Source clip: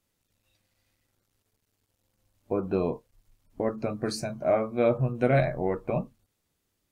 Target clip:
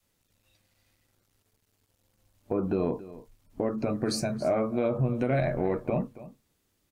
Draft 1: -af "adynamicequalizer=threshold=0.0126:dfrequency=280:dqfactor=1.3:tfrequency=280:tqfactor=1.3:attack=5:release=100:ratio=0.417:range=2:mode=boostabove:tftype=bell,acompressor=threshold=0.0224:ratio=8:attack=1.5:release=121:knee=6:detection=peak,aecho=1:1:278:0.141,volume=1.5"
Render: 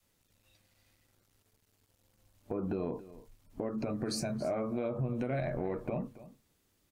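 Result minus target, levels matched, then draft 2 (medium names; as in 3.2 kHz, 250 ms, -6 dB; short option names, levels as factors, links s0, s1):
compression: peak gain reduction +8 dB
-af "adynamicequalizer=threshold=0.0126:dfrequency=280:dqfactor=1.3:tfrequency=280:tqfactor=1.3:attack=5:release=100:ratio=0.417:range=2:mode=boostabove:tftype=bell,acompressor=threshold=0.0631:ratio=8:attack=1.5:release=121:knee=6:detection=peak,aecho=1:1:278:0.141,volume=1.5"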